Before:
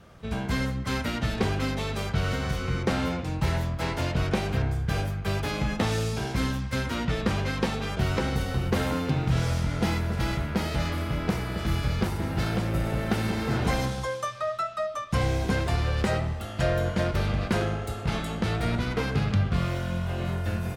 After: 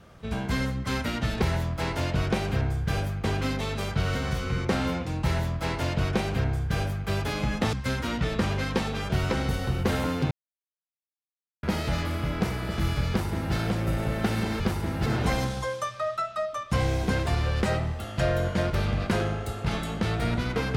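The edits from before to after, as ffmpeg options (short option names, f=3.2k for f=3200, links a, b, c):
-filter_complex "[0:a]asplit=8[a][b][c][d][e][f][g][h];[a]atrim=end=1.422[i];[b]atrim=start=3.428:end=5.252[j];[c]atrim=start=1.418:end=5.912[k];[d]atrim=start=6.598:end=9.18,asetpts=PTS-STARTPTS,afade=t=out:st=2.578:d=0.004:c=hsin[l];[e]atrim=start=9.18:end=10.5,asetpts=PTS-STARTPTS,volume=0[m];[f]atrim=start=10.5:end=13.472,asetpts=PTS-STARTPTS,afade=t=in:d=0.004:c=hsin[n];[g]atrim=start=11.958:end=12.422[o];[h]atrim=start=13.468[p];[i][j]acrossfade=d=0.004:c1=hsin:c2=hsin[q];[q][k]acrossfade=d=0.004:c1=hsin:c2=hsin[r];[l][m][n]concat=n=3:v=0:a=1[s];[r][s]acrossfade=d=0.004:c1=hsin:c2=hsin[t];[t][o]acrossfade=d=0.004:c1=hsin:c2=hsin[u];[u][p]acrossfade=d=0.004:c1=hsin:c2=hsin"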